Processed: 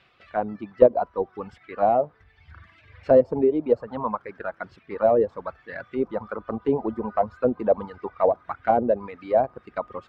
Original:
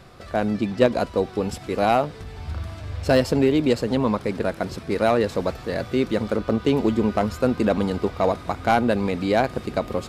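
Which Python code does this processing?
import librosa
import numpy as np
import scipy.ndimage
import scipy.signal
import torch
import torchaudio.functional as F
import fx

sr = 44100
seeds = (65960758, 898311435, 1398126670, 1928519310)

y = fx.dereverb_blind(x, sr, rt60_s=1.8)
y = fx.auto_wah(y, sr, base_hz=550.0, top_hz=2900.0, q=2.3, full_db=-16.0, direction='down')
y = fx.riaa(y, sr, side='playback')
y = F.gain(torch.from_numpy(y), 3.0).numpy()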